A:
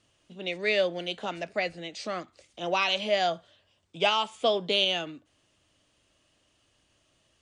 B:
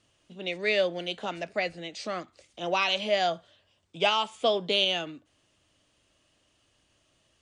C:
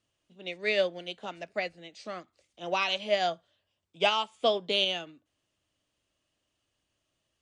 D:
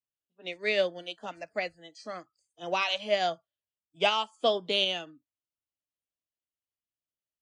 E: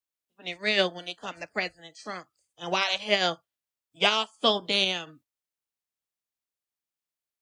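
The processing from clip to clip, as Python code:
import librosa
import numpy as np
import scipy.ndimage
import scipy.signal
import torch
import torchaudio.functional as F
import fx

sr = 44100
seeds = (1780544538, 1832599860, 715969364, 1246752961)

y1 = x
y2 = fx.upward_expand(y1, sr, threshold_db=-43.0, expansion=1.5)
y3 = fx.noise_reduce_blind(y2, sr, reduce_db=24)
y4 = fx.spec_clip(y3, sr, under_db=13)
y4 = y4 * librosa.db_to_amplitude(2.5)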